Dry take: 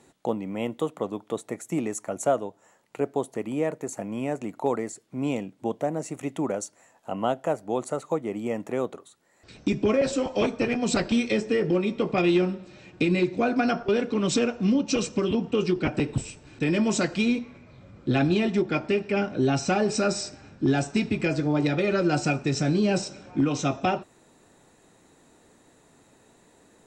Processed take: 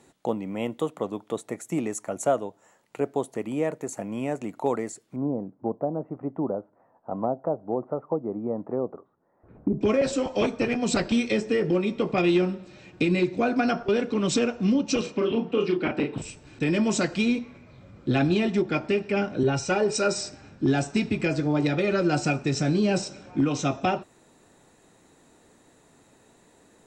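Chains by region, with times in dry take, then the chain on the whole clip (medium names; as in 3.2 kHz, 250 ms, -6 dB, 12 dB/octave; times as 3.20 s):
5.16–9.81 s: low-pass 1.2 kHz 24 dB/octave + low-pass that closes with the level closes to 830 Hz, closed at -22.5 dBFS
15.01–16.22 s: three-band isolator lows -14 dB, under 190 Hz, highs -21 dB, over 4.4 kHz + doubling 35 ms -5 dB
19.43–20.18 s: comb 2.1 ms, depth 46% + three bands expanded up and down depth 70%
whole clip: none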